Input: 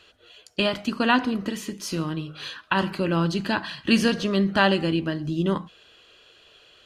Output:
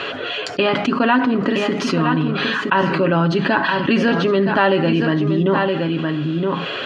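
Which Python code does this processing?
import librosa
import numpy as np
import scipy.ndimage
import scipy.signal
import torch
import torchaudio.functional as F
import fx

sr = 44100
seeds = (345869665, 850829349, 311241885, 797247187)

p1 = fx.bandpass_edges(x, sr, low_hz=180.0, high_hz=2200.0)
p2 = p1 + 0.49 * np.pad(p1, (int(7.3 * sr / 1000.0), 0))[:len(p1)]
p3 = p2 + fx.echo_single(p2, sr, ms=968, db=-11.5, dry=0)
p4 = fx.env_flatten(p3, sr, amount_pct=70)
y = p4 * librosa.db_to_amplitude(2.5)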